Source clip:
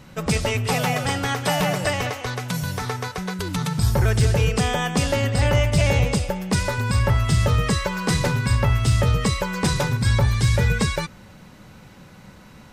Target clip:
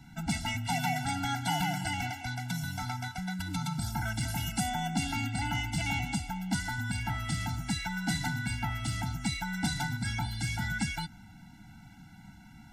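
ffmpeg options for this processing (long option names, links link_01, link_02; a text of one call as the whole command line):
ffmpeg -i in.wav -filter_complex "[0:a]asettb=1/sr,asplit=3[link_01][link_02][link_03];[link_01]atrim=end=4.284[link_04];[link_02]atrim=start=4.28:end=4.7,asetpts=PTS-STARTPTS,afade=type=in:duration=0.004:curve=qsin,afade=type=out:start_time=0.416:duration=0.004:curve=qsin,equalizer=frequency=12000:width_type=o:width=0.71:gain=14.5[link_05];[link_03]atrim=start=4.696[link_06];[link_04][link_05]acrossfade=duration=0.004:curve1=hsin:curve2=qsin[link_07];[link_07][link_06]acrossfade=duration=0.004:curve1=qsin:curve2=hsin,acrossover=split=200|1100[link_08][link_09][link_10];[link_08]acompressor=threshold=-31dB:ratio=6[link_11];[link_11][link_09][link_10]amix=inputs=3:normalize=0,afftfilt=real='re*eq(mod(floor(b*sr/1024/330),2),0)':imag='im*eq(mod(floor(b*sr/1024/330),2),0)':win_size=1024:overlap=0.75,volume=-5.5dB" out.wav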